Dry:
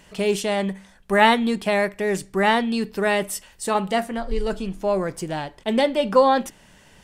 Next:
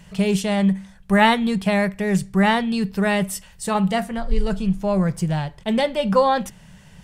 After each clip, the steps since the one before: resonant low shelf 220 Hz +7 dB, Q 3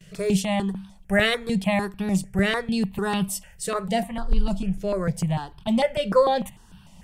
gate with hold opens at -41 dBFS; step phaser 6.7 Hz 240–2000 Hz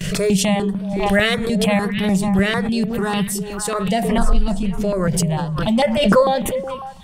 delay with a stepping band-pass 0.183 s, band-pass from 150 Hz, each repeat 1.4 oct, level -4.5 dB; backwards sustainer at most 35 dB/s; gain +3.5 dB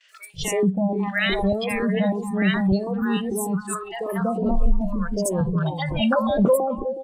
three bands offset in time mids, highs, lows 80/330 ms, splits 880/5700 Hz; spectral noise reduction 21 dB; gain -3 dB

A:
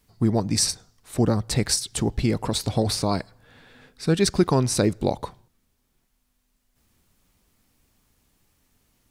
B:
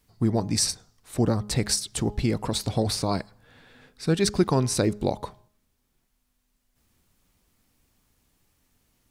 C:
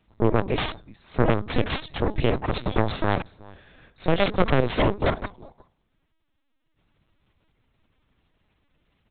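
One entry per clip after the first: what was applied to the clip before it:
de-hum 207.9 Hz, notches 6; gain -2 dB
outdoor echo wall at 63 m, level -20 dB; added harmonics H 7 -10 dB, 8 -11 dB, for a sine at -7 dBFS; LPC vocoder at 8 kHz pitch kept

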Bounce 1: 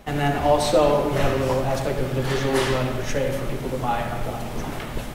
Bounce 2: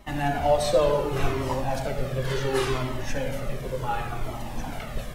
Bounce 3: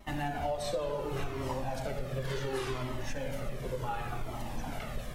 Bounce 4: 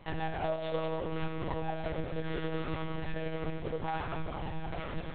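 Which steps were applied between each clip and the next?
cascading flanger falling 0.69 Hz
compressor, threshold -27 dBFS, peak gain reduction 11 dB; vibrato 1 Hz 22 cents; gain -3.5 dB
tracing distortion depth 0.35 ms; monotone LPC vocoder at 8 kHz 160 Hz

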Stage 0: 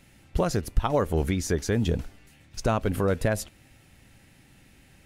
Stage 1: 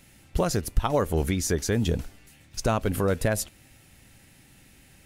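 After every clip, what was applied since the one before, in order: high shelf 5400 Hz +7.5 dB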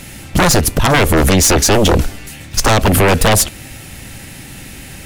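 sine folder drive 13 dB, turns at -12 dBFS; gain +5 dB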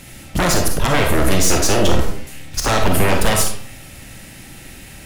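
reverb RT60 0.55 s, pre-delay 5 ms, DRR 1.5 dB; gain -7 dB

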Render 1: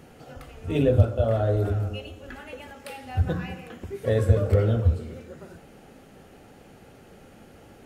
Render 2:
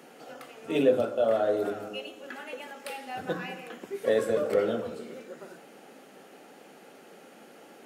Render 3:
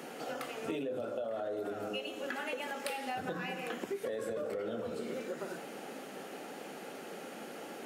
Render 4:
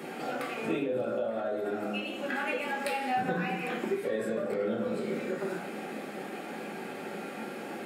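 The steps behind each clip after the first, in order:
Bessel high-pass 310 Hz, order 6; gain +1.5 dB
limiter -23 dBFS, peak gain reduction 11 dB; compressor 12:1, threshold -40 dBFS, peak gain reduction 14 dB; gain +6 dB
reverb RT60 0.50 s, pre-delay 3 ms, DRR -2.5 dB

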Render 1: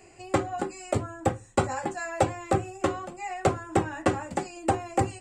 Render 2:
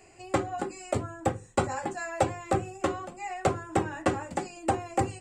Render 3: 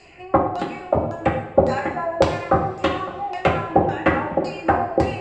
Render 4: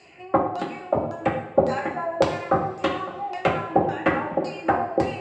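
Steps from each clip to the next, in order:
notches 50/100/150/200/250/300/350/400/450/500 Hz; gain -1.5 dB
LFO low-pass saw down 1.8 Hz 430–4800 Hz; two-slope reverb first 0.72 s, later 3.4 s, from -19 dB, DRR 2 dB; gain +6 dB
HPF 120 Hz 12 dB/oct; gain -3 dB

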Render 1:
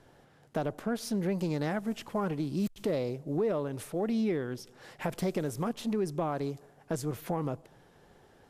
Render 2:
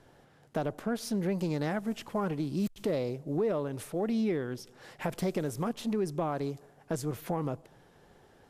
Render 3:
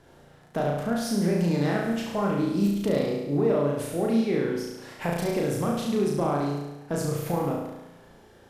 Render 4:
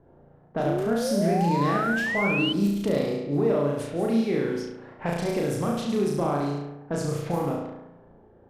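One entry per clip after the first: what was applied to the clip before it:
nothing audible
flutter echo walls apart 6 m, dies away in 1 s; gain +2.5 dB
painted sound rise, 0.65–2.53, 310–3100 Hz -28 dBFS; low-pass opened by the level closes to 720 Hz, open at -22 dBFS

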